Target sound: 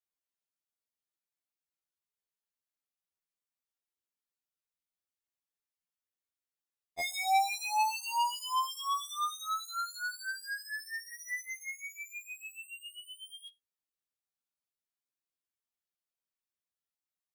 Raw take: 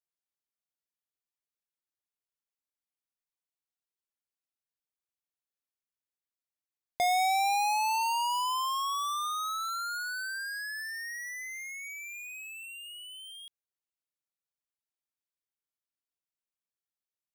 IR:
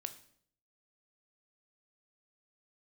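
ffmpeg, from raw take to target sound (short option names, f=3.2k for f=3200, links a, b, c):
-filter_complex "[0:a]asettb=1/sr,asplit=3[a][b][c];[a]atrim=end=11.104[d];[b]atrim=start=11.1:end=11.74,asetpts=PTS-STARTPTS,afade=t=in:d=0.004:c=qsin,afade=t=out:st=0.636:d=0.004:c=qsin,aecho=1:1:5:0.82,atrim=end_sample=28224[e];[c]atrim=start=11.736[f];[d][e]acrossfade=d=0.004:c1=hsin:c2=qsin[g];[g][f]acrossfade=d=0.004:c1=qsin:c2=hsin,asplit=2[h][i];[1:a]atrim=start_sample=2205,afade=t=out:st=0.15:d=0.01,atrim=end_sample=7056[j];[i][j]afir=irnorm=-1:irlink=0,volume=-5.5dB[k];[h][k]amix=inputs=2:normalize=0,afftfilt=real='re*2*eq(mod(b,4),0)':imag='im*2*eq(mod(b,4),0)':win_size=2048:overlap=0.75,volume=-3.5dB"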